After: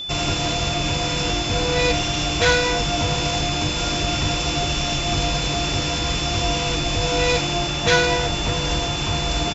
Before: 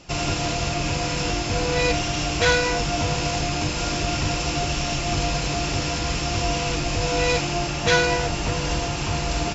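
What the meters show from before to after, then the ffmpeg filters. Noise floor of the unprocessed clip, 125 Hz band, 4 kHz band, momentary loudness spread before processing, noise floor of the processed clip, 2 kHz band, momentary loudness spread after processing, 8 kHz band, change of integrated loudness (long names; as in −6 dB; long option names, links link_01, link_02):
−27 dBFS, +1.5 dB, +5.5 dB, 5 LU, −24 dBFS, +1.5 dB, 4 LU, can't be measured, +2.5 dB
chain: -filter_complex "[0:a]asplit=2[link_01][link_02];[link_02]adelay=130,highpass=300,lowpass=3400,asoftclip=type=hard:threshold=-15dB,volume=-22dB[link_03];[link_01][link_03]amix=inputs=2:normalize=0,aeval=exprs='val(0)+0.0355*sin(2*PI*3500*n/s)':channel_layout=same,volume=1.5dB"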